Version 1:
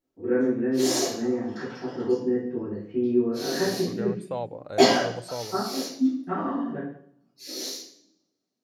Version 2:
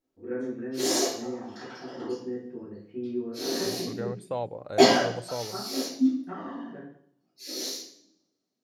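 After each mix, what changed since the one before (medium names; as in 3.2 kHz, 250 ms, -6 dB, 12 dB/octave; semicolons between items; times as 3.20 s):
first voice: send -10.0 dB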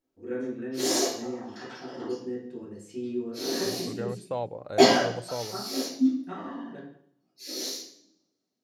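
first voice: remove low-pass 2.2 kHz 24 dB/octave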